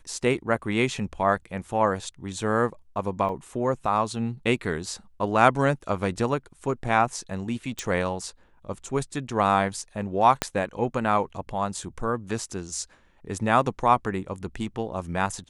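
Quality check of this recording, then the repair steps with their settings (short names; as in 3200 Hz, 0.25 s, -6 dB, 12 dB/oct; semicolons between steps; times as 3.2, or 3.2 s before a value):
3.29 gap 2.7 ms
7.79 pop
10.42 pop -7 dBFS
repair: de-click; interpolate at 3.29, 2.7 ms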